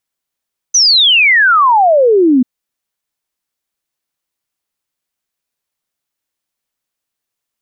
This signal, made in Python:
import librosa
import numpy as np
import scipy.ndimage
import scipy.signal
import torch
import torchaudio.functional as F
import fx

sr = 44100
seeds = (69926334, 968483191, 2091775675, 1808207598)

y = fx.ess(sr, length_s=1.69, from_hz=6200.0, to_hz=240.0, level_db=-5.5)